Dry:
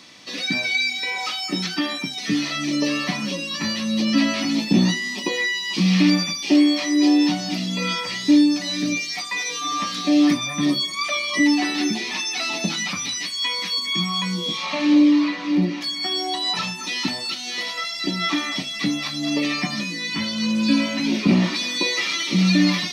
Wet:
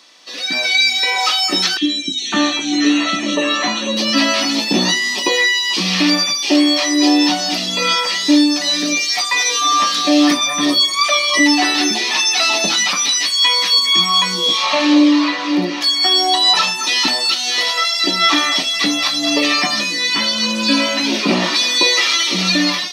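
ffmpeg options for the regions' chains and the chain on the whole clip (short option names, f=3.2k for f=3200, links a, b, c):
-filter_complex "[0:a]asettb=1/sr,asplit=3[a][b][c];[a]atrim=end=1.774[d];[b]atrim=start=1.77:end=3.97,asetpts=PTS-STARTPTS,afade=t=in:d=0.004:c=qsin,afade=t=out:st=2.196:d=0.004:c=qsin,asuperstop=centerf=4900:order=4:qfactor=2.5,highpass=130,equalizer=f=230:t=q:w=4:g=4,equalizer=f=320:t=q:w=4:g=9,equalizer=f=4.4k:t=q:w=4:g=6,lowpass=f=7.2k:w=0.5412,lowpass=f=7.2k:w=1.3066,acrossover=split=340|2800[e][f][g];[e]adelay=40[h];[f]adelay=550[i];[h][i][g]amix=inputs=3:normalize=0,atrim=end_sample=97020[j];[c]atrim=start=3.966[k];[d][j]acrossfade=d=0.004:c1=hsin:c2=qsin[l];[l][k]acrossfade=d=0.004:c1=qsin:c2=hsin,highpass=450,equalizer=f=2.2k:t=o:w=0.35:g=-5.5,dynaudnorm=f=220:g=5:m=13dB"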